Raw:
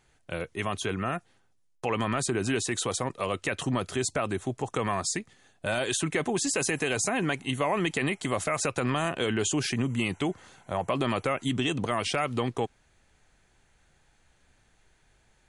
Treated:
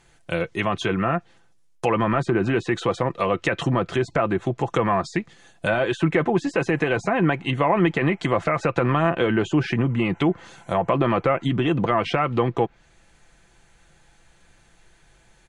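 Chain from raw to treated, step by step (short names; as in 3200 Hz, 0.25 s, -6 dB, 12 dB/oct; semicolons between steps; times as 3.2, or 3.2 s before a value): treble ducked by the level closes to 1800 Hz, closed at -25 dBFS; comb 5.9 ms, depth 40%; gain +7.5 dB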